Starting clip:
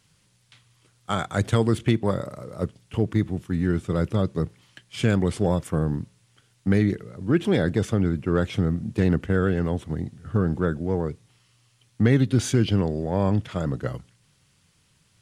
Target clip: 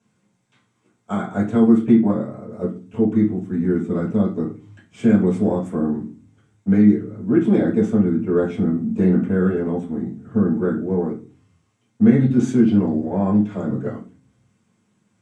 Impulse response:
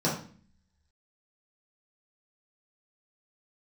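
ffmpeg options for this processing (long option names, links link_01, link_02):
-filter_complex "[0:a]asetnsamples=nb_out_samples=441:pad=0,asendcmd='1.19 highshelf g -11.5;2.5 highshelf g -5',highshelf=frequency=4000:gain=-6[link_01];[1:a]atrim=start_sample=2205,asetrate=61740,aresample=44100[link_02];[link_01][link_02]afir=irnorm=-1:irlink=0,volume=-11dB"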